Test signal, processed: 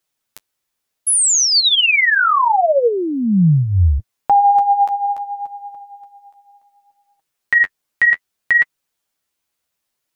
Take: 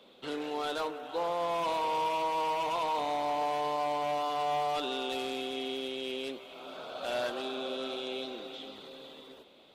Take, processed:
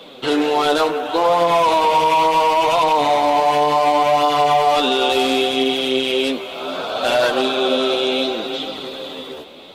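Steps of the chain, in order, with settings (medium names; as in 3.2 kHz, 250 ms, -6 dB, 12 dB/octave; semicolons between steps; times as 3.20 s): flange 0.69 Hz, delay 5.9 ms, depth 8 ms, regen +21%; loudness maximiser +28 dB; trim -6 dB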